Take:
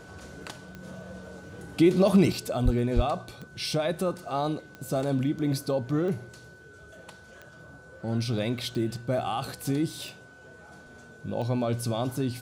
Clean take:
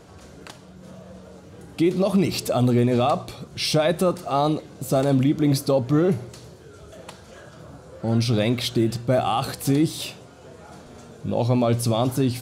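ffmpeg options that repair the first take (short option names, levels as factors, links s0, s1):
-filter_complex "[0:a]adeclick=t=4,bandreject=f=1500:w=30,asplit=3[s0][s1][s2];[s0]afade=t=out:st=2.64:d=0.02[s3];[s1]highpass=f=140:w=0.5412,highpass=f=140:w=1.3066,afade=t=in:st=2.64:d=0.02,afade=t=out:st=2.76:d=0.02[s4];[s2]afade=t=in:st=2.76:d=0.02[s5];[s3][s4][s5]amix=inputs=3:normalize=0,asplit=3[s6][s7][s8];[s6]afade=t=out:st=2.95:d=0.02[s9];[s7]highpass=f=140:w=0.5412,highpass=f=140:w=1.3066,afade=t=in:st=2.95:d=0.02,afade=t=out:st=3.07:d=0.02[s10];[s8]afade=t=in:st=3.07:d=0.02[s11];[s9][s10][s11]amix=inputs=3:normalize=0,asetnsamples=n=441:p=0,asendcmd='2.32 volume volume 7.5dB',volume=1"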